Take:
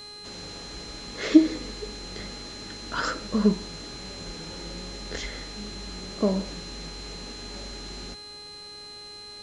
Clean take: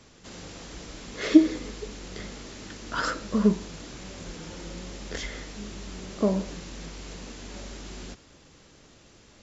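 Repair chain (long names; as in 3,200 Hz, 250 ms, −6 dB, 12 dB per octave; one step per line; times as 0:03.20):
hum removal 413.7 Hz, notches 27
notch filter 4,100 Hz, Q 30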